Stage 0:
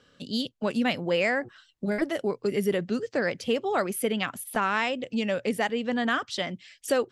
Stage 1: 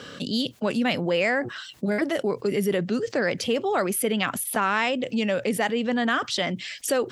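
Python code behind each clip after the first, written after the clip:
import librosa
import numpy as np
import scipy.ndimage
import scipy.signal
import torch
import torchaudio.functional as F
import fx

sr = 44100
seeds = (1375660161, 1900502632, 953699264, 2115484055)

y = scipy.signal.sosfilt(scipy.signal.butter(2, 100.0, 'highpass', fs=sr, output='sos'), x)
y = fx.env_flatten(y, sr, amount_pct=50)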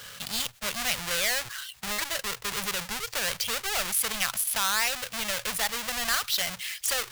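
y = fx.halfwave_hold(x, sr)
y = fx.tone_stack(y, sr, knobs='10-0-10')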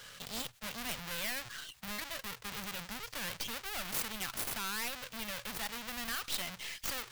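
y = fx.tracing_dist(x, sr, depth_ms=0.24)
y = y * 10.0 ** (-7.0 / 20.0)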